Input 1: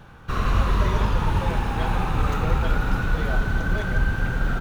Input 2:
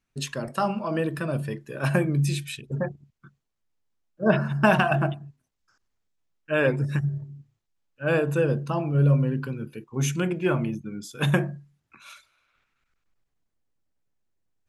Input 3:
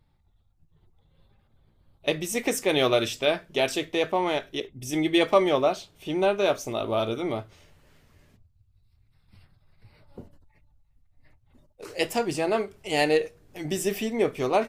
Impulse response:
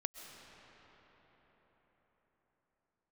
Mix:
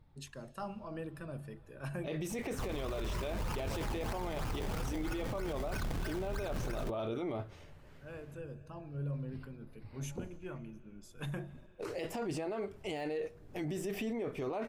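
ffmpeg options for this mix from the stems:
-filter_complex "[0:a]alimiter=limit=-19dB:level=0:latency=1:release=39,acrusher=samples=22:mix=1:aa=0.000001:lfo=1:lforange=22:lforate=3.1,adelay=2300,volume=-3dB[link_01];[1:a]highshelf=frequency=4500:gain=10,volume=-17dB,asplit=2[link_02][link_03];[link_03]volume=-15.5dB[link_04];[2:a]deesser=0.6,volume=2.5dB,asplit=2[link_05][link_06];[link_06]apad=whole_len=647486[link_07];[link_02][link_07]sidechaincompress=threshold=-43dB:ratio=4:attack=25:release=1430[link_08];[link_08][link_05]amix=inputs=2:normalize=0,highshelf=frequency=2500:gain=-10,acompressor=threshold=-29dB:ratio=2,volume=0dB[link_09];[3:a]atrim=start_sample=2205[link_10];[link_04][link_10]afir=irnorm=-1:irlink=0[link_11];[link_01][link_09][link_11]amix=inputs=3:normalize=0,alimiter=level_in=6dB:limit=-24dB:level=0:latency=1:release=16,volume=-6dB"

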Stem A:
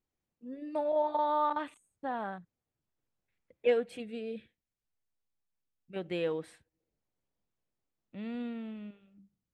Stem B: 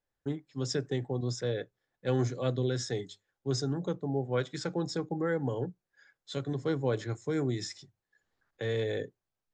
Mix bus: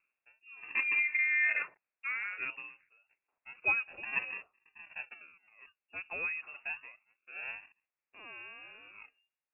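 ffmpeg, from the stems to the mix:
ffmpeg -i stem1.wav -i stem2.wav -filter_complex "[0:a]equalizer=frequency=250:width=0.73:gain=-12.5,adynamicequalizer=threshold=0.00112:dfrequency=2800:dqfactor=2.3:tfrequency=2800:tqfactor=2.3:attack=5:release=100:ratio=0.375:range=2.5:mode=cutabove:tftype=bell,volume=2.5dB,asplit=3[link_01][link_02][link_03];[link_01]atrim=end=6.58,asetpts=PTS-STARTPTS,afade=type=out:start_time=6.576:duration=0.004:curve=hsin[link_04];[link_02]atrim=start=6.58:end=7.67,asetpts=PTS-STARTPTS,volume=0[link_05];[link_03]atrim=start=7.67,asetpts=PTS-STARTPTS,afade=type=in:duration=0.004:curve=hsin[link_06];[link_04][link_05][link_06]concat=n=3:v=0:a=1,asplit=2[link_07][link_08];[1:a]acompressor=mode=upward:threshold=-54dB:ratio=2.5,acrusher=samples=38:mix=1:aa=0.000001:lfo=1:lforange=38:lforate=0.28,aeval=exprs='val(0)*pow(10,-26*(0.5-0.5*cos(2*PI*1.2*n/s))/20)':channel_layout=same,volume=0dB[link_09];[link_08]apad=whole_len=420557[link_10];[link_09][link_10]sidechaingate=range=-7dB:threshold=-50dB:ratio=16:detection=peak[link_11];[link_07][link_11]amix=inputs=2:normalize=0,highpass=frequency=270:width=0.5412,highpass=frequency=270:width=1.3066,lowpass=frequency=2600:width_type=q:width=0.5098,lowpass=frequency=2600:width_type=q:width=0.6013,lowpass=frequency=2600:width_type=q:width=0.9,lowpass=frequency=2600:width_type=q:width=2.563,afreqshift=-3000" out.wav

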